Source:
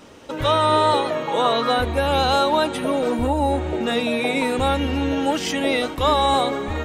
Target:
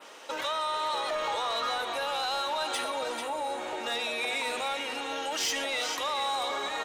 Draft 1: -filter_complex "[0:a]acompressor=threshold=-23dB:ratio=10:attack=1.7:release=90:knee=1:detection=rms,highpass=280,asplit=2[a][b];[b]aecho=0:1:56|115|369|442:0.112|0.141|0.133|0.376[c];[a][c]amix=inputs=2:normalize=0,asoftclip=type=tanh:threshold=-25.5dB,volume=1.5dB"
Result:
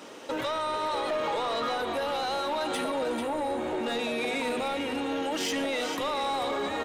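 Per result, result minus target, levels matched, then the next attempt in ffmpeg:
250 Hz band +11.0 dB; 8000 Hz band -5.0 dB
-filter_complex "[0:a]acompressor=threshold=-23dB:ratio=10:attack=1.7:release=90:knee=1:detection=rms,highpass=710,asplit=2[a][b];[b]aecho=0:1:56|115|369|442:0.112|0.141|0.133|0.376[c];[a][c]amix=inputs=2:normalize=0,asoftclip=type=tanh:threshold=-25.5dB,volume=1.5dB"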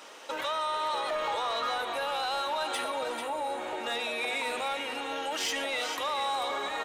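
8000 Hz band -3.0 dB
-filter_complex "[0:a]acompressor=threshold=-23dB:ratio=10:attack=1.7:release=90:knee=1:detection=rms,adynamicequalizer=threshold=0.00251:dfrequency=5700:dqfactor=1.2:tfrequency=5700:tqfactor=1.2:attack=5:release=100:ratio=0.45:range=3:mode=boostabove:tftype=bell,highpass=710,asplit=2[a][b];[b]aecho=0:1:56|115|369|442:0.112|0.141|0.133|0.376[c];[a][c]amix=inputs=2:normalize=0,asoftclip=type=tanh:threshold=-25.5dB,volume=1.5dB"

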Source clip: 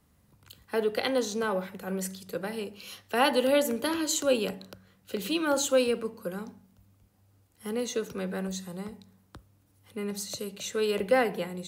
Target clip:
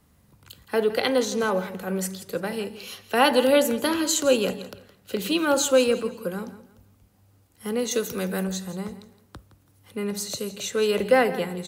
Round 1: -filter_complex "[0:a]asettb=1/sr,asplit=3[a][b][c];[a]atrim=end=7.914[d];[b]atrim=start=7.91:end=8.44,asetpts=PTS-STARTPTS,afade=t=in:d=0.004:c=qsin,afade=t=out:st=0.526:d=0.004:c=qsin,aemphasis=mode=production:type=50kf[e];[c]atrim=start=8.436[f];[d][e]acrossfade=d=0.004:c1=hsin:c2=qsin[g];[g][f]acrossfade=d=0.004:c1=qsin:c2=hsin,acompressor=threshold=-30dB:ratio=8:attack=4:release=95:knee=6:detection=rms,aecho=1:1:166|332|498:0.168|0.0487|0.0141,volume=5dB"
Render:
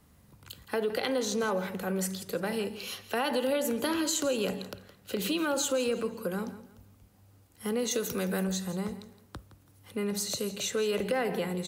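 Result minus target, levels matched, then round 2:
compressor: peak gain reduction +14 dB
-filter_complex "[0:a]asettb=1/sr,asplit=3[a][b][c];[a]atrim=end=7.914[d];[b]atrim=start=7.91:end=8.44,asetpts=PTS-STARTPTS,afade=t=in:d=0.004:c=qsin,afade=t=out:st=0.526:d=0.004:c=qsin,aemphasis=mode=production:type=50kf[e];[c]atrim=start=8.436[f];[d][e]acrossfade=d=0.004:c1=hsin:c2=qsin[g];[g][f]acrossfade=d=0.004:c1=qsin:c2=hsin,aecho=1:1:166|332|498:0.168|0.0487|0.0141,volume=5dB"

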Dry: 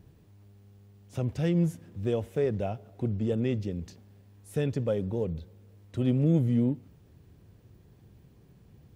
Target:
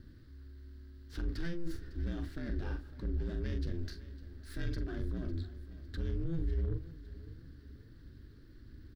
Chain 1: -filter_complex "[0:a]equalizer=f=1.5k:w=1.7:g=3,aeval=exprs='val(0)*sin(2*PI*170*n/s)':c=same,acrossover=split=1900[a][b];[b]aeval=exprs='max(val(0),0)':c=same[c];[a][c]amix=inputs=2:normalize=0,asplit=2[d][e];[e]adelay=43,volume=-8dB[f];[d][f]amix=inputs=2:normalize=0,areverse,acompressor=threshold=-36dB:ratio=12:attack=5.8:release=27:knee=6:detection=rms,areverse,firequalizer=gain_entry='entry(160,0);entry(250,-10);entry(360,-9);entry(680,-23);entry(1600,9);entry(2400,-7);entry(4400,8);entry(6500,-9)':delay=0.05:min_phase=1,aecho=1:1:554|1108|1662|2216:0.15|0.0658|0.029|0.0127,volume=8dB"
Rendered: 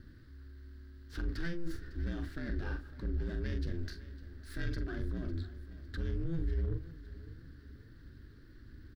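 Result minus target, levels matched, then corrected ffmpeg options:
2000 Hz band +4.0 dB
-filter_complex "[0:a]equalizer=f=1.5k:w=1.7:g=-3,aeval=exprs='val(0)*sin(2*PI*170*n/s)':c=same,acrossover=split=1900[a][b];[b]aeval=exprs='max(val(0),0)':c=same[c];[a][c]amix=inputs=2:normalize=0,asplit=2[d][e];[e]adelay=43,volume=-8dB[f];[d][f]amix=inputs=2:normalize=0,areverse,acompressor=threshold=-36dB:ratio=12:attack=5.8:release=27:knee=6:detection=rms,areverse,firequalizer=gain_entry='entry(160,0);entry(250,-10);entry(360,-9);entry(680,-23);entry(1600,9);entry(2400,-7);entry(4400,8);entry(6500,-9)':delay=0.05:min_phase=1,aecho=1:1:554|1108|1662|2216:0.15|0.0658|0.029|0.0127,volume=8dB"

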